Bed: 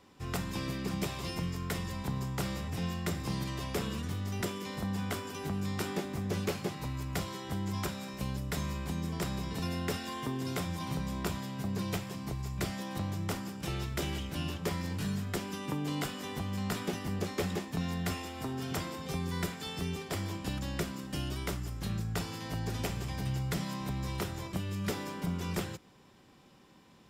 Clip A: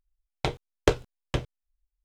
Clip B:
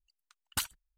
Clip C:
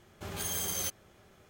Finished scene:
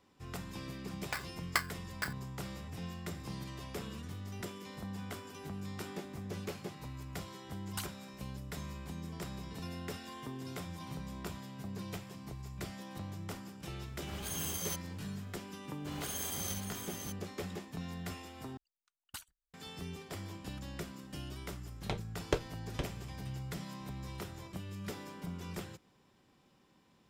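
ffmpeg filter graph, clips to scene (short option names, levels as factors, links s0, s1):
-filter_complex "[1:a]asplit=2[s0][s1];[2:a]asplit=2[s2][s3];[3:a]asplit=2[s4][s5];[0:a]volume=0.398[s6];[s0]aeval=exprs='val(0)*sgn(sin(2*PI*1600*n/s))':c=same[s7];[s5]aecho=1:1:64|584:0.596|0.531[s8];[s6]asplit=2[s9][s10];[s9]atrim=end=18.574[s11];[s3]atrim=end=0.97,asetpts=PTS-STARTPTS,volume=0.2[s12];[s10]atrim=start=19.536[s13];[s7]atrim=end=2.04,asetpts=PTS-STARTPTS,volume=0.282,afade=t=in:d=0.004:c=hsin,afade=t=out:st=2.036:d=0.004:c=hsin,adelay=680[s14];[s2]atrim=end=0.97,asetpts=PTS-STARTPTS,volume=0.355,afade=t=in:d=0.004:c=hsin,afade=t=out:st=0.966:d=0.004:c=hsin,adelay=7200[s15];[s4]atrim=end=1.49,asetpts=PTS-STARTPTS,volume=0.562,afade=t=in:d=0.004:c=hsin,afade=t=out:st=1.486:d=0.004:c=hsin,adelay=13860[s16];[s8]atrim=end=1.49,asetpts=PTS-STARTPTS,volume=0.473,afade=t=in:d=0.004:c=hsin,afade=t=out:st=1.486:d=0.004:c=hsin,adelay=15640[s17];[s1]atrim=end=2.04,asetpts=PTS-STARTPTS,volume=0.316,afade=t=in:d=0.004:c=hsin,afade=t=out:st=2.036:d=0.004:c=hsin,adelay=21450[s18];[s11][s12]acrossfade=d=0.004:c1=hsin:c2=hsin[s19];[s19][s13]acrossfade=d=0.004:c1=hsin:c2=hsin[s20];[s20][s14][s15][s16][s17][s18]amix=inputs=6:normalize=0"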